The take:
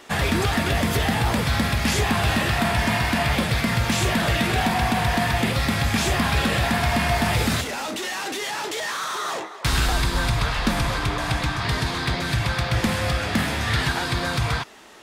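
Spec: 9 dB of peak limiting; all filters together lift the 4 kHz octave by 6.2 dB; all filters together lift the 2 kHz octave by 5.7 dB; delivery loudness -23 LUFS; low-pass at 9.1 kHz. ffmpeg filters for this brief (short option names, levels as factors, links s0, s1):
-af "lowpass=9100,equalizer=f=2000:t=o:g=5.5,equalizer=f=4000:t=o:g=6,alimiter=limit=0.168:level=0:latency=1"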